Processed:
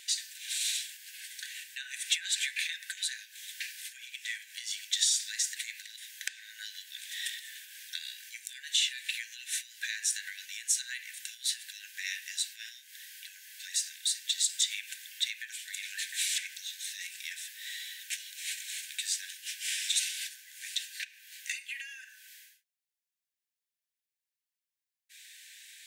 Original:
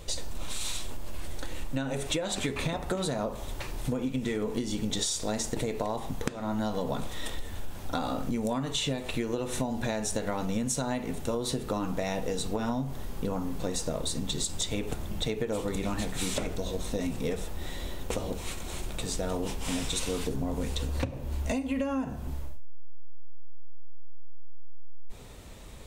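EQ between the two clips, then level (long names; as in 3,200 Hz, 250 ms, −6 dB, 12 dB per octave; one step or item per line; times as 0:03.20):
linear-phase brick-wall high-pass 1,500 Hz
+4.0 dB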